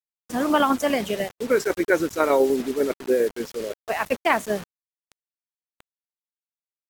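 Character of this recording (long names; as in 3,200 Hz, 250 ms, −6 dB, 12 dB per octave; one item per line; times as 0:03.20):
tremolo saw down 10 Hz, depth 50%
a quantiser's noise floor 6 bits, dither none
AAC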